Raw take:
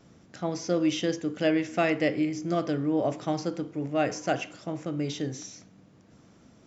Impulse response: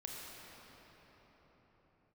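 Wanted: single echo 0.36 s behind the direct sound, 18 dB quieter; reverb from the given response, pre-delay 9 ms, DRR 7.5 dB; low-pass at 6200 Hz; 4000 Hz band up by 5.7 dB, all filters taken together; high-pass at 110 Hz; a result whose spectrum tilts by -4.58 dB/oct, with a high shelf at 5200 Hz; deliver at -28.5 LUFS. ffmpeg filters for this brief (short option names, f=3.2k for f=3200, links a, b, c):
-filter_complex "[0:a]highpass=110,lowpass=6.2k,equalizer=f=4k:t=o:g=6.5,highshelf=f=5.2k:g=5,aecho=1:1:360:0.126,asplit=2[a][b];[1:a]atrim=start_sample=2205,adelay=9[c];[b][c]afir=irnorm=-1:irlink=0,volume=-6.5dB[d];[a][d]amix=inputs=2:normalize=0,volume=-1dB"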